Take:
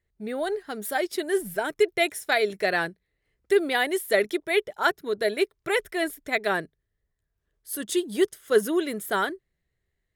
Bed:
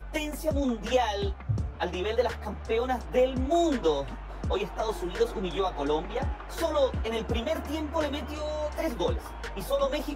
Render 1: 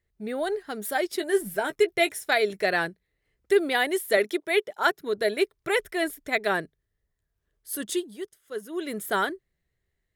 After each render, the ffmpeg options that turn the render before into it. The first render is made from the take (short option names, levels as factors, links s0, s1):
-filter_complex "[0:a]asettb=1/sr,asplit=3[s0][s1][s2];[s0]atrim=end=1.174[s3];[s1]atrim=start=1.17:end=2.13,asetpts=PTS-STARTPTS,afade=t=in:d=0.004:c=qsin,afade=t=out:st=0.956:d=0.004:c=qsin,asplit=2[s4][s5];[s5]adelay=15,volume=0.316[s6];[s4][s6]amix=inputs=2:normalize=0,atrim=end_sample=42336[s7];[s2]atrim=start=2.126[s8];[s3][s7]acrossfade=d=0.004:c1=hsin:c2=qsin[s9];[s9][s8]acrossfade=d=0.004:c1=qsin:c2=hsin,asettb=1/sr,asplit=3[s10][s11][s12];[s10]atrim=end=4.174[s13];[s11]atrim=start=4.17:end=4.99,asetpts=PTS-STARTPTS,afade=t=in:d=0.004:c=qsin,afade=t=out:st=0.816:d=0.004:c=qsin,highpass=200[s14];[s12]atrim=start=4.986[s15];[s13][s14]acrossfade=d=0.004:c1=hsin:c2=qsin[s16];[s16][s15]acrossfade=d=0.004:c1=qsin:c2=hsin,asplit=3[s17][s18][s19];[s17]atrim=end=8.16,asetpts=PTS-STARTPTS,afade=t=out:st=7.87:d=0.29:silence=0.199526[s20];[s18]atrim=start=8.16:end=8.69,asetpts=PTS-STARTPTS,volume=0.2[s21];[s19]atrim=start=8.69,asetpts=PTS-STARTPTS,afade=t=in:d=0.29:silence=0.199526[s22];[s20][s21][s22]concat=n=3:v=0:a=1"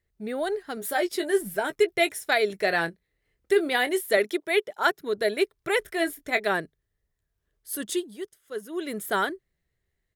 -filter_complex "[0:a]asettb=1/sr,asplit=3[s0][s1][s2];[s0]atrim=end=0.754[s3];[s1]atrim=start=0.75:end=1.31,asetpts=PTS-STARTPTS,afade=t=in:d=0.004:c=qsin,afade=t=out:st=0.556:d=0.004:c=qsin,asplit=2[s4][s5];[s5]adelay=17,volume=0.447[s6];[s4][s6]amix=inputs=2:normalize=0,atrim=end_sample=24696[s7];[s2]atrim=start=1.306[s8];[s3][s7]acrossfade=d=0.004:c1=hsin:c2=qsin[s9];[s9][s8]acrossfade=d=0.004:c1=qsin:c2=hsin,asettb=1/sr,asplit=3[s10][s11][s12];[s10]atrim=end=2.644[s13];[s11]atrim=start=2.64:end=4.01,asetpts=PTS-STARTPTS,afade=t=in:d=0.004:c=qsin,afade=t=out:st=1.366:d=0.004:c=qsin,asplit=2[s14][s15];[s15]adelay=24,volume=0.237[s16];[s14][s16]amix=inputs=2:normalize=0,atrim=end_sample=60417[s17];[s12]atrim=start=4.006[s18];[s13][s17]acrossfade=d=0.004:c1=hsin:c2=qsin[s19];[s19][s18]acrossfade=d=0.004:c1=qsin:c2=hsin,asplit=3[s20][s21][s22];[s20]afade=t=out:st=5.81:d=0.02[s23];[s21]asplit=2[s24][s25];[s25]adelay=21,volume=0.335[s26];[s24][s26]amix=inputs=2:normalize=0,afade=t=in:st=5.81:d=0.02,afade=t=out:st=6.39:d=0.02[s27];[s22]afade=t=in:st=6.39:d=0.02[s28];[s23][s27][s28]amix=inputs=3:normalize=0"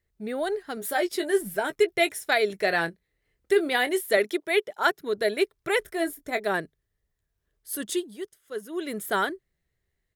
-filter_complex "[0:a]asettb=1/sr,asplit=3[s0][s1][s2];[s0]atrim=end=5.864[s3];[s1]atrim=start=5.86:end=6.54,asetpts=PTS-STARTPTS,afade=t=in:d=0.004:c=qsin,afade=t=out:st=0.676:d=0.004:c=qsin,equalizer=f=2600:t=o:w=1.8:g=-6.5[s4];[s2]atrim=start=6.536[s5];[s3][s4]acrossfade=d=0.004:c1=hsin:c2=qsin[s6];[s6][s5]acrossfade=d=0.004:c1=qsin:c2=hsin"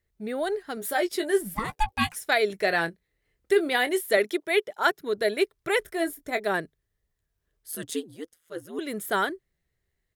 -filter_complex "[0:a]asplit=3[s0][s1][s2];[s0]afade=t=out:st=1.54:d=0.02[s3];[s1]aeval=exprs='val(0)*sin(2*PI*440*n/s)':c=same,afade=t=in:st=1.54:d=0.02,afade=t=out:st=2.15:d=0.02[s4];[s2]afade=t=in:st=2.15:d=0.02[s5];[s3][s4][s5]amix=inputs=3:normalize=0,asettb=1/sr,asplit=3[s6][s7][s8];[s6]atrim=end=7.714[s9];[s7]atrim=start=7.71:end=8.79,asetpts=PTS-STARTPTS,afade=t=in:d=0.004:c=qsin,afade=t=out:st=1.076:d=0.004:c=qsin,aeval=exprs='val(0)*sin(2*PI*82*n/s)':c=same[s10];[s8]atrim=start=8.786[s11];[s9][s10]acrossfade=d=0.004:c1=hsin:c2=qsin[s12];[s12][s11]acrossfade=d=0.004:c1=qsin:c2=hsin"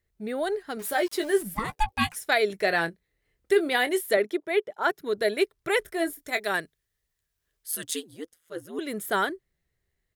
-filter_complex "[0:a]asettb=1/sr,asplit=3[s0][s1][s2];[s0]atrim=end=0.794[s3];[s1]atrim=start=0.79:end=1.43,asetpts=PTS-STARTPTS,afade=t=in:d=0.004:c=qsin,afade=t=out:st=0.636:d=0.004:c=qsin,aeval=exprs='val(0)*gte(abs(val(0)),0.01)':c=same[s4];[s2]atrim=start=1.426[s5];[s3][s4]acrossfade=d=0.004:c1=hsin:c2=qsin[s6];[s6][s5]acrossfade=d=0.004:c1=qsin:c2=hsin,asettb=1/sr,asplit=3[s7][s8][s9];[s7]atrim=end=4.144[s10];[s8]atrim=start=4.14:end=4.9,asetpts=PTS-STARTPTS,afade=t=in:d=0.004:c=qsin,afade=t=out:st=0.756:d=0.004:c=qsin,highshelf=f=2300:g=-10[s11];[s9]atrim=start=4.896[s12];[s10][s11]acrossfade=d=0.004:c1=hsin:c2=qsin[s13];[s13][s12]acrossfade=d=0.004:c1=qsin:c2=hsin,asettb=1/sr,asplit=3[s14][s15][s16];[s14]atrim=end=6.184[s17];[s15]atrim=start=6.18:end=8.13,asetpts=PTS-STARTPTS,afade=t=in:d=0.004:c=qsin,afade=t=out:st=1.946:d=0.004:c=qsin,tiltshelf=f=1200:g=-5.5[s18];[s16]atrim=start=8.126[s19];[s17][s18]acrossfade=d=0.004:c1=hsin:c2=qsin[s20];[s20][s19]acrossfade=d=0.004:c1=qsin:c2=hsin"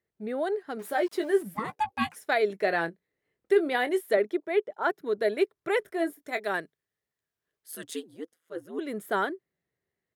-af "highpass=180,highshelf=f=2400:g=-11.5"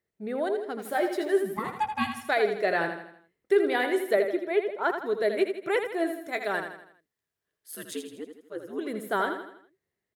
-af "aecho=1:1:81|162|243|324|405:0.422|0.194|0.0892|0.041|0.0189"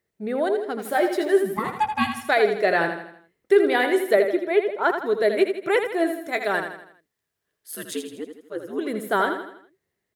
-af "volume=1.88"